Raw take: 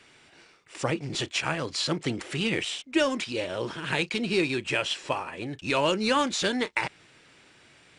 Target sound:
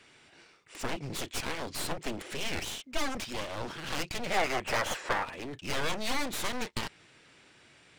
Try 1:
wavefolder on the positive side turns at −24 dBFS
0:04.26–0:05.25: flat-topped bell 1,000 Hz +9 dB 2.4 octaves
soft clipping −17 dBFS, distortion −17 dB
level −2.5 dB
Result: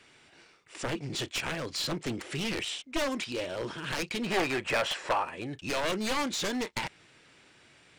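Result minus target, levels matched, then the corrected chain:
wavefolder on the positive side: distortion −17 dB
wavefolder on the positive side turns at −35.5 dBFS
0:04.26–0:05.25: flat-topped bell 1,000 Hz +9 dB 2.4 octaves
soft clipping −17 dBFS, distortion −16 dB
level −2.5 dB

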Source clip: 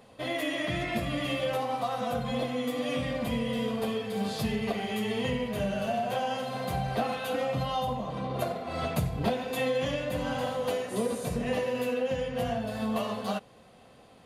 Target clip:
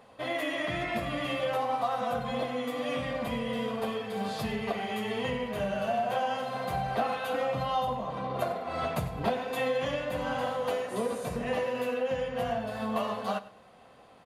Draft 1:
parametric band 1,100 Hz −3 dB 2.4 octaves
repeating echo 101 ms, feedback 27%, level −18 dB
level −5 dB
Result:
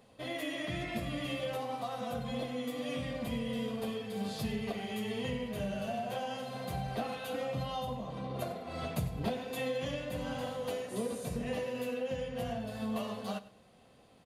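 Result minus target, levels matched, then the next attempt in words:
1,000 Hz band −4.0 dB
parametric band 1,100 Hz +8 dB 2.4 octaves
repeating echo 101 ms, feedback 27%, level −18 dB
level −5 dB

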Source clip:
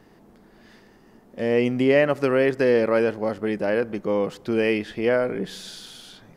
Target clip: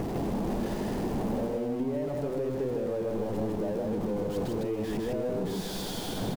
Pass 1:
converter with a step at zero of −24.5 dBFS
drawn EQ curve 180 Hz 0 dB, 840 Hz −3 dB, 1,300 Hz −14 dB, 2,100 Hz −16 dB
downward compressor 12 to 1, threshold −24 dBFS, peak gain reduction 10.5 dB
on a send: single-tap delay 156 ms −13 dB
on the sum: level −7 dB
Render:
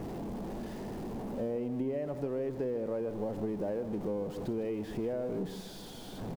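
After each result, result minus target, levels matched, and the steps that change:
echo-to-direct −11.5 dB; converter with a step at zero: distortion −8 dB
change: single-tap delay 156 ms −1.5 dB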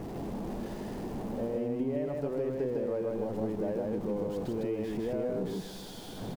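converter with a step at zero: distortion −8 dB
change: converter with a step at zero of −12.5 dBFS

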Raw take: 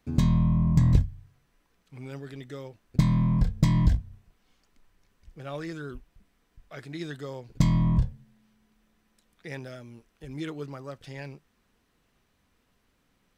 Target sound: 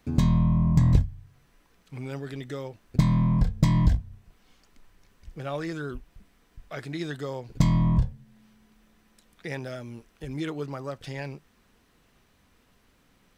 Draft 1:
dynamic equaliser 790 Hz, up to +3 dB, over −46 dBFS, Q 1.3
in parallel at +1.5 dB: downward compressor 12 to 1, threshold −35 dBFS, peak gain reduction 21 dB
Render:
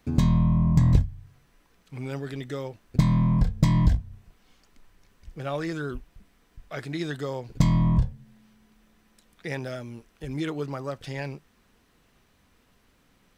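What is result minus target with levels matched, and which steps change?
downward compressor: peak gain reduction −5.5 dB
change: downward compressor 12 to 1, threshold −41 dBFS, peak gain reduction 26.5 dB

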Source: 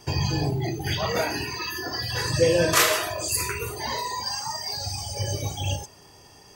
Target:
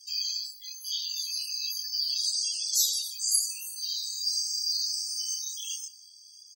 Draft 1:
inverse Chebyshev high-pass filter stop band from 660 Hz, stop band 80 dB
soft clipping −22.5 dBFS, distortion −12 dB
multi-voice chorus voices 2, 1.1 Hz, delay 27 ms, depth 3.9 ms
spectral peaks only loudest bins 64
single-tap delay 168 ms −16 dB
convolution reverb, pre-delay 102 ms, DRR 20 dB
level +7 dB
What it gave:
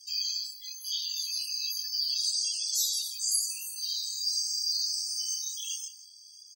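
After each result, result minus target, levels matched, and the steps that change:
soft clipping: distortion +14 dB; echo-to-direct +4.5 dB
change: soft clipping −11.5 dBFS, distortion −26 dB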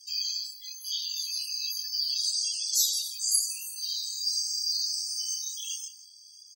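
echo-to-direct +4.5 dB
change: single-tap delay 168 ms −26 dB

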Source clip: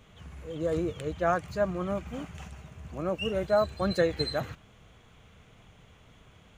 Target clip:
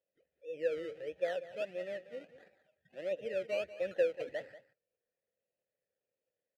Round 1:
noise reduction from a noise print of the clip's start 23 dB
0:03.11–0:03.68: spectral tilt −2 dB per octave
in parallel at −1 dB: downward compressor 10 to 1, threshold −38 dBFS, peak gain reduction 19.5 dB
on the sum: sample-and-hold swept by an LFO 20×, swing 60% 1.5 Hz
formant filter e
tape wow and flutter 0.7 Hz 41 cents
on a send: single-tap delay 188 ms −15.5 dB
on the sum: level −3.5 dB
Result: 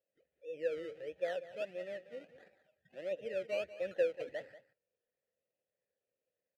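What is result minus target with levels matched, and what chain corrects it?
downward compressor: peak gain reduction +8.5 dB
noise reduction from a noise print of the clip's start 23 dB
0:03.11–0:03.68: spectral tilt −2 dB per octave
in parallel at −1 dB: downward compressor 10 to 1, threshold −28.5 dBFS, peak gain reduction 11 dB
on the sum: sample-and-hold swept by an LFO 20×, swing 60% 1.5 Hz
formant filter e
tape wow and flutter 0.7 Hz 41 cents
on a send: single-tap delay 188 ms −15.5 dB
on the sum: level −3.5 dB

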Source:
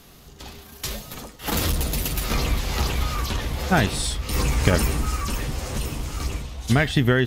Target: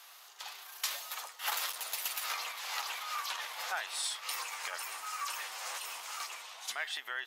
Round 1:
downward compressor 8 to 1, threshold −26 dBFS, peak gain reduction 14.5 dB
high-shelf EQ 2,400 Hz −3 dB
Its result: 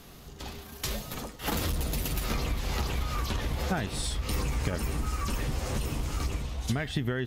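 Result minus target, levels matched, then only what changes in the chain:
1,000 Hz band −3.0 dB
add after downward compressor: high-pass filter 840 Hz 24 dB per octave

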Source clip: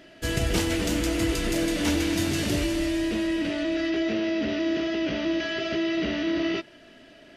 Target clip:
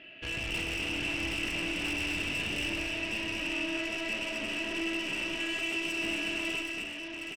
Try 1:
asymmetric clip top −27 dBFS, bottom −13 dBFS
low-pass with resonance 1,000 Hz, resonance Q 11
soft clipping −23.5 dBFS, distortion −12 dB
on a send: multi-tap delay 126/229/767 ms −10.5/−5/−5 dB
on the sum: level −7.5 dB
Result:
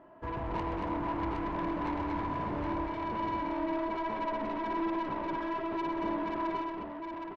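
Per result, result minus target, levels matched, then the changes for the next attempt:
1,000 Hz band +16.0 dB; asymmetric clip: distortion −4 dB
change: low-pass with resonance 2,700 Hz, resonance Q 11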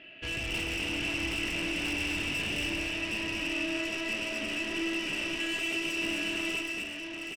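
asymmetric clip: distortion −4 dB
change: asymmetric clip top −35.5 dBFS, bottom −13 dBFS

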